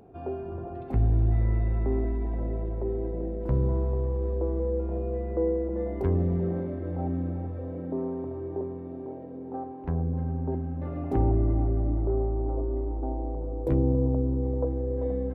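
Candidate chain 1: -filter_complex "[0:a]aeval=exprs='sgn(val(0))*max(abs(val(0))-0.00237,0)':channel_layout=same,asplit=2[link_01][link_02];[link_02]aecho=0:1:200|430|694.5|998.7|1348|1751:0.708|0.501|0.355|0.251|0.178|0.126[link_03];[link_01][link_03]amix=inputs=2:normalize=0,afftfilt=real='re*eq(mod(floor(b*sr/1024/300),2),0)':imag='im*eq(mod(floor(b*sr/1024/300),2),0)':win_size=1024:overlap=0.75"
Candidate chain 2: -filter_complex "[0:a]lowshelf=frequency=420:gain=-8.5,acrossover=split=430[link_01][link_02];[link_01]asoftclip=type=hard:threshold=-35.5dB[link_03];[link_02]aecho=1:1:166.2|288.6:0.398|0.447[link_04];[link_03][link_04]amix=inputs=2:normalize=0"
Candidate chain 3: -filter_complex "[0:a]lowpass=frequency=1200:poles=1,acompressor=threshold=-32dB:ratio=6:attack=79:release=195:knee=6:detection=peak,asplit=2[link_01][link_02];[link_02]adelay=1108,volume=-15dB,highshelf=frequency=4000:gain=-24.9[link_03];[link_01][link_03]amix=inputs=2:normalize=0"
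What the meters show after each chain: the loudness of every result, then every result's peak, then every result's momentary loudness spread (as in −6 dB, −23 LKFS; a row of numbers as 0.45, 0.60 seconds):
−26.5, −37.5, −34.5 LKFS; −10.0, −22.5, −19.0 dBFS; 16, 6, 4 LU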